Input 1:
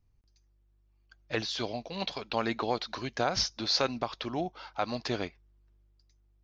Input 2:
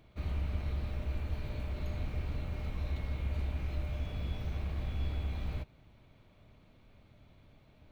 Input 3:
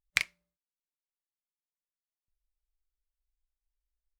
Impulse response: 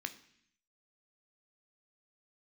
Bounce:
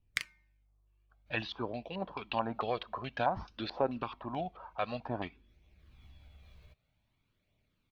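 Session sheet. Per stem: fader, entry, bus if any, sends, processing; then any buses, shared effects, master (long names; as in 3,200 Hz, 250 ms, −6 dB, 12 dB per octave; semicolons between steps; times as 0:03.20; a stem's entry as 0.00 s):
−1.0 dB, 0.00 s, send −15.5 dB, high-shelf EQ 4,300 Hz −9.5 dB; notch filter 2,100 Hz, Q 8.4; auto-filter low-pass square 2.3 Hz 970–3,000 Hz
−16.0 dB, 1.10 s, send −16 dB, high-shelf EQ 2,100 Hz +10.5 dB; downward compressor, threshold −35 dBFS, peak gain reduction 7.5 dB; automatic ducking −18 dB, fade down 1.70 s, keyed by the first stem
−3.5 dB, 0.00 s, send −23 dB, hum removal 304.4 Hz, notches 7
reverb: on, RT60 0.65 s, pre-delay 10 ms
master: flanger 0.53 Hz, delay 0.3 ms, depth 1.6 ms, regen −30%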